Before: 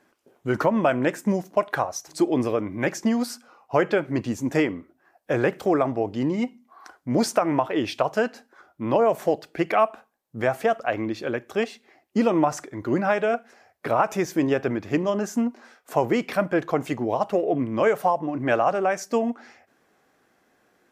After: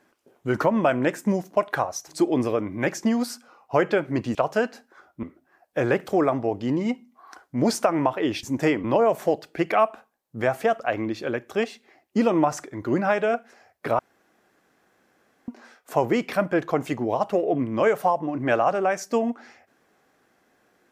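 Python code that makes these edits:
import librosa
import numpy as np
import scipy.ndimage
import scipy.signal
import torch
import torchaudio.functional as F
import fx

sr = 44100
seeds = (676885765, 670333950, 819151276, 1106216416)

y = fx.edit(x, sr, fx.swap(start_s=4.35, length_s=0.41, other_s=7.96, other_length_s=0.88),
    fx.room_tone_fill(start_s=13.99, length_s=1.49), tone=tone)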